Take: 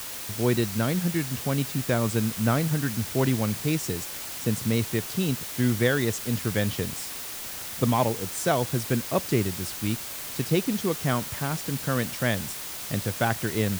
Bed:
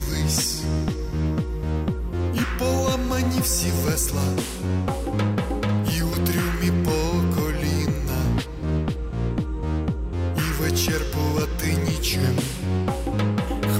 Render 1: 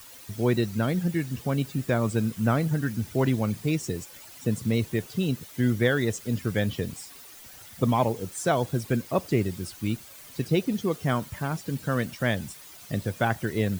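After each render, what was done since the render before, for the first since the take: noise reduction 13 dB, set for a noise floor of -36 dBFS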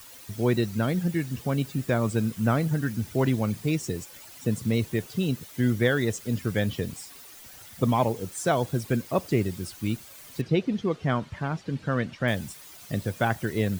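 10.41–12.28 s: low-pass 3.9 kHz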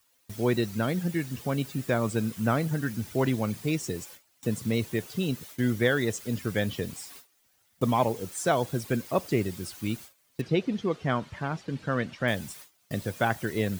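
bass shelf 190 Hz -5.5 dB; gate with hold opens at -34 dBFS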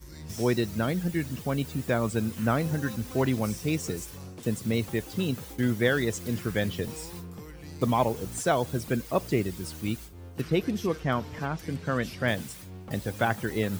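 add bed -20 dB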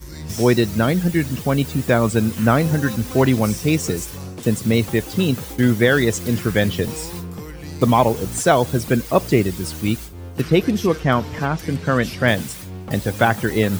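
trim +10 dB; peak limiter -2 dBFS, peak gain reduction 3 dB

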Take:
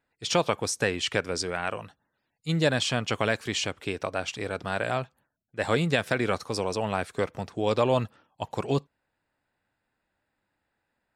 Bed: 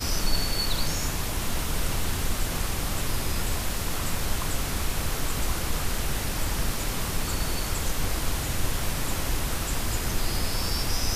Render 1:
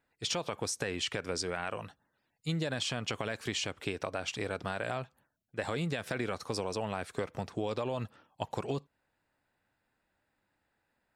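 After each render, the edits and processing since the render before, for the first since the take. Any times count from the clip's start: peak limiter -15.5 dBFS, peak gain reduction 6 dB; compression 4:1, threshold -31 dBFS, peak gain reduction 8 dB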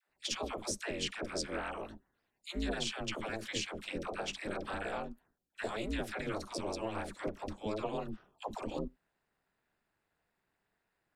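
phase dispersion lows, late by 100 ms, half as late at 560 Hz; ring modulator 110 Hz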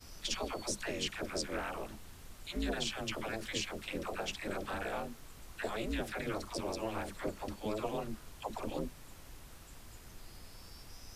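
add bed -25 dB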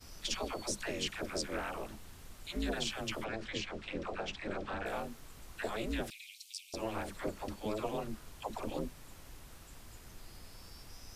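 3.24–4.86 s: distance through air 110 m; 6.10–6.74 s: steep high-pass 2.4 kHz 72 dB/octave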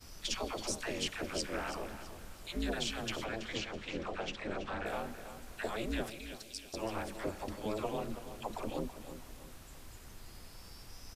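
on a send: feedback delay 328 ms, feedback 36%, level -11.5 dB; on the sum: Schroeder reverb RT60 3.5 s, combs from 31 ms, DRR 18.5 dB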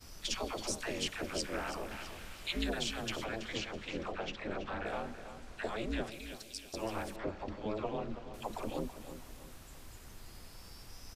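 1.91–2.64 s: peaking EQ 2.6 kHz +9.5 dB 1.6 oct; 4.12–6.12 s: distance through air 58 m; 7.16–8.34 s: distance through air 170 m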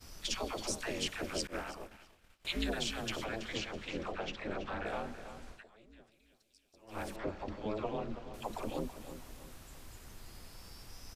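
1.47–2.45 s: expander -35 dBFS; 5.49–7.02 s: dip -23 dB, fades 0.15 s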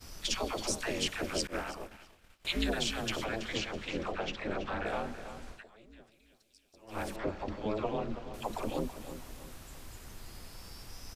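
trim +3.5 dB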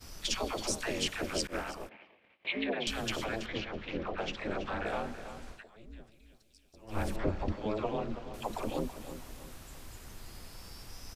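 1.89–2.87 s: cabinet simulation 220–3000 Hz, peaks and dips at 530 Hz +3 dB, 1.4 kHz -9 dB, 2.2 kHz +6 dB; 3.46–4.18 s: distance through air 210 m; 5.76–7.52 s: bass shelf 180 Hz +11.5 dB

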